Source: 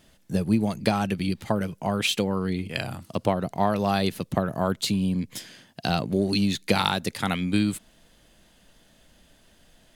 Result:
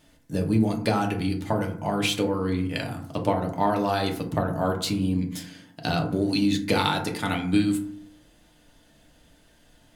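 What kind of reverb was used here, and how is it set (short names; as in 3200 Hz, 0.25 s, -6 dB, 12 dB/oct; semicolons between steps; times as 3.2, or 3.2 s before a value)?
FDN reverb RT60 0.6 s, low-frequency decay 1.4×, high-frequency decay 0.4×, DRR 1 dB; gain -2.5 dB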